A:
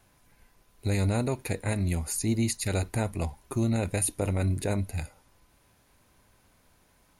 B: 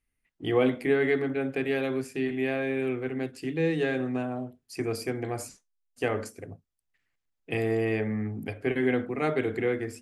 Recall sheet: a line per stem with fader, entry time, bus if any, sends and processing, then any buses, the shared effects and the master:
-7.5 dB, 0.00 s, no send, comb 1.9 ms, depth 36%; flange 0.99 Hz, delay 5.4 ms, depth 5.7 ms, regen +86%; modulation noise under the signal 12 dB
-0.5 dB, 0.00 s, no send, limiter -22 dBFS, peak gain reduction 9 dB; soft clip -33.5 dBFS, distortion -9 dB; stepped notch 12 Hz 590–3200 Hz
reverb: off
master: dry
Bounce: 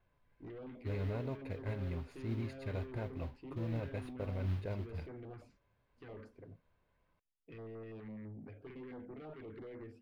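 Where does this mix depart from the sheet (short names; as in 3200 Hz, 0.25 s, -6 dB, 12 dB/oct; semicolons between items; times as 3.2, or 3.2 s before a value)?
stem B -0.5 dB -> -10.0 dB; master: extra air absorption 360 m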